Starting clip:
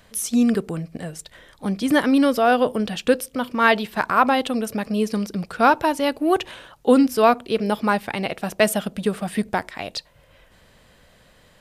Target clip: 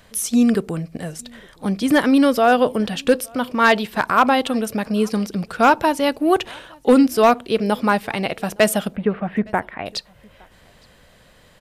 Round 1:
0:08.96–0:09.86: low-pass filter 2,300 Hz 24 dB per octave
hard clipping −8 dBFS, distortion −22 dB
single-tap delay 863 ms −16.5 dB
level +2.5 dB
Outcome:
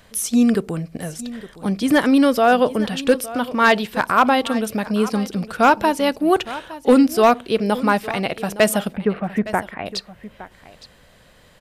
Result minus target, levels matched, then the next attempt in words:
echo-to-direct +12 dB
0:08.96–0:09.86: low-pass filter 2,300 Hz 24 dB per octave
hard clipping −8 dBFS, distortion −22 dB
single-tap delay 863 ms −28.5 dB
level +2.5 dB

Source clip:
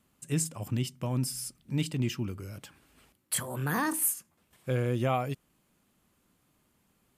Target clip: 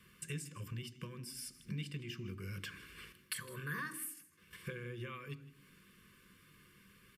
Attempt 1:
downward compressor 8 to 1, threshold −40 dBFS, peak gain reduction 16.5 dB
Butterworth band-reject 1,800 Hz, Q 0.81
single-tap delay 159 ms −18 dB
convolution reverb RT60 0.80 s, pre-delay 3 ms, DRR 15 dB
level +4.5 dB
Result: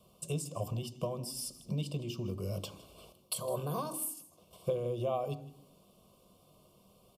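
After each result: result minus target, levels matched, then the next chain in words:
2,000 Hz band −18.5 dB; downward compressor: peak gain reduction −6.5 dB
downward compressor 8 to 1, threshold −40 dBFS, peak gain reduction 16.5 dB
Butterworth band-reject 700 Hz, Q 0.81
single-tap delay 159 ms −18 dB
convolution reverb RT60 0.80 s, pre-delay 3 ms, DRR 15 dB
level +4.5 dB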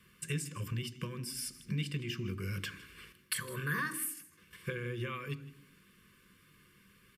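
downward compressor: peak gain reduction −6.5 dB
downward compressor 8 to 1, threshold −47.5 dBFS, peak gain reduction 23 dB
Butterworth band-reject 700 Hz, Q 0.81
single-tap delay 159 ms −18 dB
convolution reverb RT60 0.80 s, pre-delay 3 ms, DRR 15 dB
level +4.5 dB

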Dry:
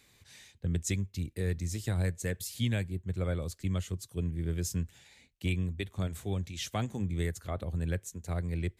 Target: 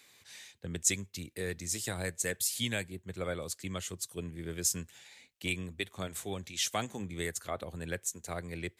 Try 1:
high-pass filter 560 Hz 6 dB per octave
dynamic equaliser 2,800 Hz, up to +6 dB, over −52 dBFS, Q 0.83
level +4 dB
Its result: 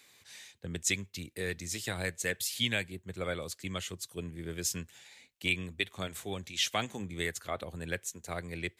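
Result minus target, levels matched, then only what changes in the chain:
8,000 Hz band −4.0 dB
change: dynamic equaliser 8,600 Hz, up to +6 dB, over −52 dBFS, Q 0.83

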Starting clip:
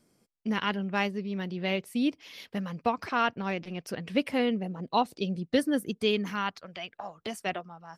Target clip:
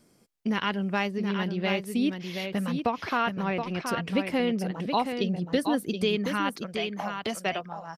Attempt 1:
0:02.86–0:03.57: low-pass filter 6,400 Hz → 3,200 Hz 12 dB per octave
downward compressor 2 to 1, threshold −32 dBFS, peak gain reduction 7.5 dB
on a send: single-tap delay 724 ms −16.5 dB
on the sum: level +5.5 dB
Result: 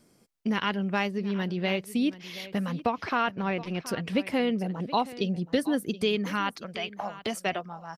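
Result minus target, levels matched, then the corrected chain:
echo-to-direct −10 dB
0:02.86–0:03.57: low-pass filter 6,400 Hz → 3,200 Hz 12 dB per octave
downward compressor 2 to 1, threshold −32 dBFS, peak gain reduction 7.5 dB
on a send: single-tap delay 724 ms −6.5 dB
on the sum: level +5.5 dB

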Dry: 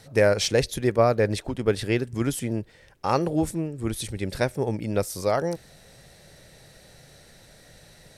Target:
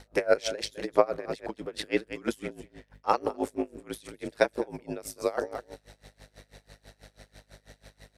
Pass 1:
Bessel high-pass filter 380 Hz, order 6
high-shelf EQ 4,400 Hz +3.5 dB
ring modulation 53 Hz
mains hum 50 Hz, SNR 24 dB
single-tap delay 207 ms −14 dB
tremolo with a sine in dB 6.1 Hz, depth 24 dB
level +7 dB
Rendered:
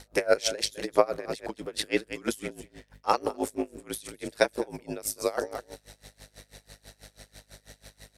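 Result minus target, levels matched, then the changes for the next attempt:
8,000 Hz band +7.0 dB
change: high-shelf EQ 4,400 Hz −7.5 dB

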